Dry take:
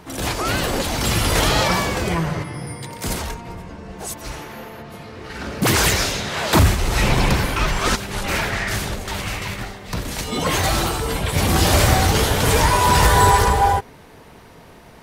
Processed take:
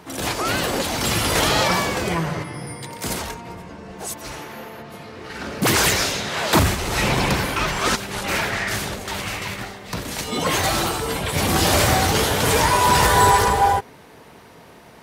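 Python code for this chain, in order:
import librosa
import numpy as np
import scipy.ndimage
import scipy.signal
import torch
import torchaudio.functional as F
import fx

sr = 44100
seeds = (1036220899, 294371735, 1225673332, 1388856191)

y = fx.highpass(x, sr, hz=140.0, slope=6)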